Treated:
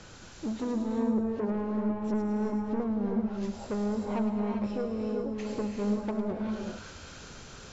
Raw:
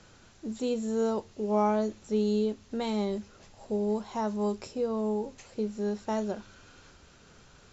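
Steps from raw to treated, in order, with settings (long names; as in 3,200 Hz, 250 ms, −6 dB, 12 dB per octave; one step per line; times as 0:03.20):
treble cut that deepens with the level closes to 320 Hz, closed at −27 dBFS
0:04.76–0:05.20: low-shelf EQ 360 Hz −7.5 dB
in parallel at +1.5 dB: brickwall limiter −26.5 dBFS, peak gain reduction 5.5 dB
on the sum: soft clipping −28 dBFS, distortion −10 dB
delay with a high-pass on its return 106 ms, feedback 54%, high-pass 3,900 Hz, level −3 dB
reverb whose tail is shaped and stops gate 420 ms rising, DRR 1.5 dB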